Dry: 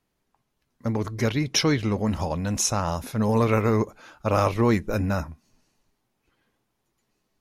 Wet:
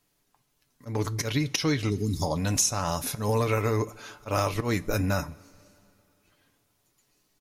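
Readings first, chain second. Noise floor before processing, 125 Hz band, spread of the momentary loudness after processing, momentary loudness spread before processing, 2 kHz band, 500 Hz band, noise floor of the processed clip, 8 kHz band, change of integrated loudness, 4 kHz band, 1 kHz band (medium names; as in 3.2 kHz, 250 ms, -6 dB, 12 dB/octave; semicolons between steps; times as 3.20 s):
-76 dBFS, -2.5 dB, 9 LU, 9 LU, -1.5 dB, -4.0 dB, -73 dBFS, +0.5 dB, -3.0 dB, -2.5 dB, -3.5 dB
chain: spectral selection erased 1.94–2.36 s, 1.3–3.1 kHz; slow attack 158 ms; treble shelf 3.3 kHz +10.5 dB; comb 6.9 ms, depth 37%; time-frequency box 1.90–2.22 s, 440–3400 Hz -26 dB; compression 6:1, threshold -22 dBFS, peak gain reduction 11 dB; two-slope reverb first 0.25 s, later 3 s, from -18 dB, DRR 15.5 dB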